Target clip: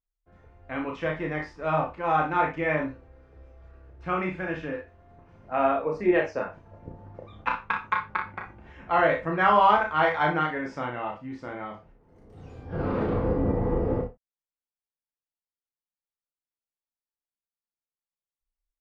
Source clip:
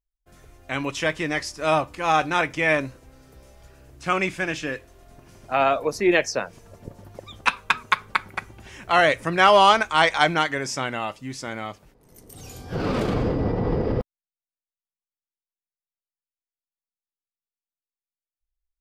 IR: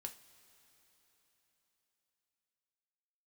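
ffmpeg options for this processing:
-filter_complex "[0:a]lowpass=1.6k,aecho=1:1:33|59:0.631|0.335[a];[1:a]atrim=start_sample=2205,atrim=end_sample=4410,asetrate=42336,aresample=44100[b];[a][b]afir=irnorm=-1:irlink=0"

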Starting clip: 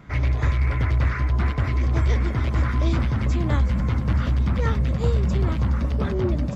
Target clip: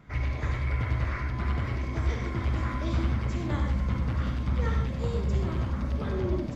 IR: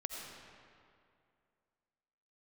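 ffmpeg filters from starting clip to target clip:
-filter_complex "[1:a]atrim=start_sample=2205,afade=t=out:st=0.32:d=0.01,atrim=end_sample=14553,asetrate=74970,aresample=44100[a];[0:a][a]afir=irnorm=-1:irlink=0"

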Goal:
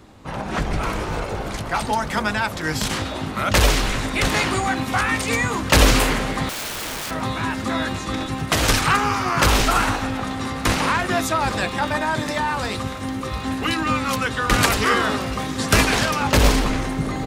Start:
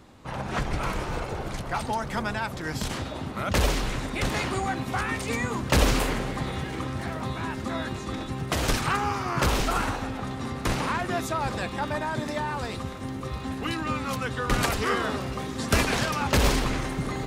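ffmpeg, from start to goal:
-filter_complex "[0:a]acrossover=split=1000[a][b];[a]asplit=2[c][d];[d]adelay=19,volume=-4dB[e];[c][e]amix=inputs=2:normalize=0[f];[b]dynaudnorm=f=290:g=11:m=5.5dB[g];[f][g]amix=inputs=2:normalize=0,asettb=1/sr,asplit=3[h][i][j];[h]atrim=end=6.494[k];[i]atrim=start=6.49:end=7.11,asetpts=PTS-STARTPTS,afade=t=in:d=0.004:c=qsin,afade=t=out:st=0.616:d=0.004:c=qsin,aeval=exprs='(mod(25.1*val(0)+1,2)-1)/25.1':c=same[l];[j]atrim=start=7.106[m];[k][l]acrossfade=d=0.004:c1=hsin:c2=qsin[n];[n][m]acrossfade=d=0.004:c1=qsin:c2=hsin,volume=4dB"

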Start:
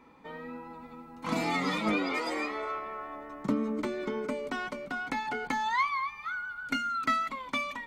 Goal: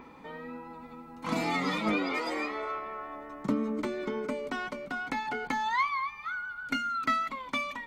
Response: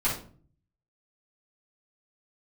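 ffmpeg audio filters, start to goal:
-af "adynamicequalizer=threshold=0.00112:dfrequency=8700:dqfactor=1.2:tfrequency=8700:tqfactor=1.2:attack=5:release=100:ratio=0.375:range=2:mode=cutabove:tftype=bell,acompressor=mode=upward:threshold=-43dB:ratio=2.5"

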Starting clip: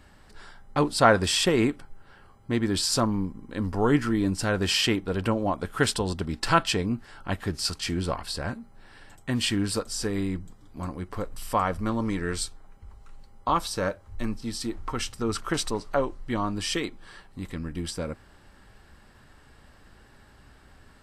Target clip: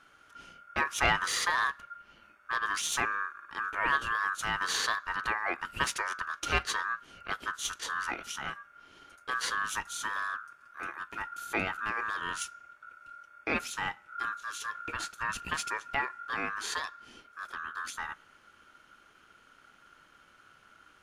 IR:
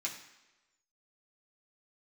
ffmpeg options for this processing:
-filter_complex "[0:a]aeval=exprs='(tanh(3.98*val(0)+0.35)-tanh(0.35))/3.98':c=same,aeval=exprs='val(0)*sin(2*PI*1400*n/s)':c=same,asplit=2[a][b];[1:a]atrim=start_sample=2205,adelay=9[c];[b][c]afir=irnorm=-1:irlink=0,volume=-23.5dB[d];[a][d]amix=inputs=2:normalize=0,volume=-2.5dB"

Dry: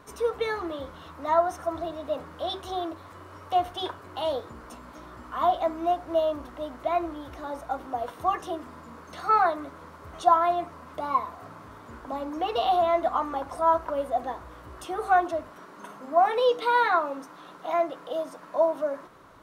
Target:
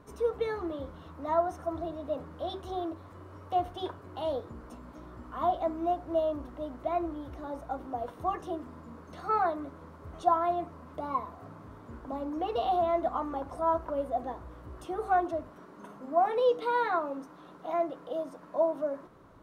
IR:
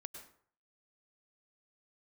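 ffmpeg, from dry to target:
-af "tiltshelf=f=690:g=6,volume=-4.5dB"

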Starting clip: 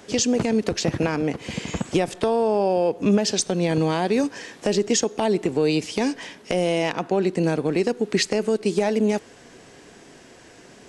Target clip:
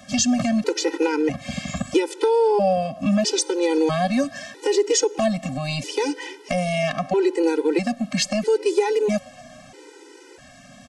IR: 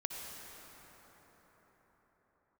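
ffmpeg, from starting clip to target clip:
-filter_complex "[0:a]bandreject=f=50:t=h:w=6,bandreject=f=100:t=h:w=6,acrossover=split=220[a][b];[a]asoftclip=type=hard:threshold=-32.5dB[c];[c][b]amix=inputs=2:normalize=0,asplit=4[d][e][f][g];[e]adelay=243,afreqshift=100,volume=-23.5dB[h];[f]adelay=486,afreqshift=200,volume=-29.5dB[i];[g]adelay=729,afreqshift=300,volume=-35.5dB[j];[d][h][i][j]amix=inputs=4:normalize=0,afftfilt=real='re*gt(sin(2*PI*0.77*pts/sr)*(1-2*mod(floor(b*sr/1024/260),2)),0)':imag='im*gt(sin(2*PI*0.77*pts/sr)*(1-2*mod(floor(b*sr/1024/260),2)),0)':win_size=1024:overlap=0.75,volume=4.5dB"

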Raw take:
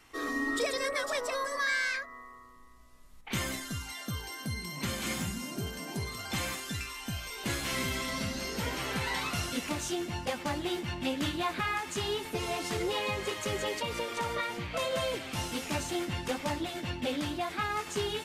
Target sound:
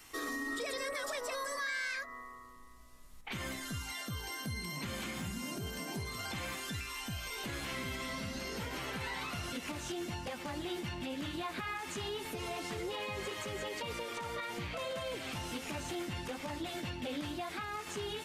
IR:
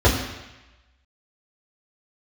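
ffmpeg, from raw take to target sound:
-filter_complex "[0:a]acrossover=split=3600[a][b];[b]acompressor=threshold=-46dB:ratio=4:attack=1:release=60[c];[a][c]amix=inputs=2:normalize=0,alimiter=level_in=7dB:limit=-24dB:level=0:latency=1:release=146,volume=-7dB,asetnsamples=n=441:p=0,asendcmd='2.04 highshelf g 4',highshelf=f=4.6k:g=11.5"

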